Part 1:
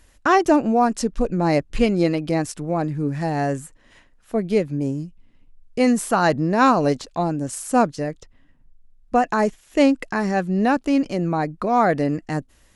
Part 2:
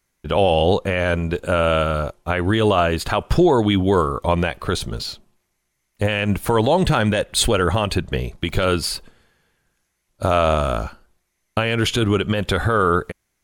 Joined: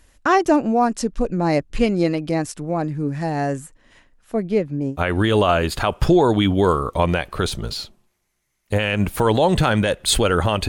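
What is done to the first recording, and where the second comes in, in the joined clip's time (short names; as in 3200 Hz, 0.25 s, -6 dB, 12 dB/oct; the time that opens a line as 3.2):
part 1
4.43–4.97 high shelf 4700 Hz -11 dB
4.93 switch to part 2 from 2.22 s, crossfade 0.08 s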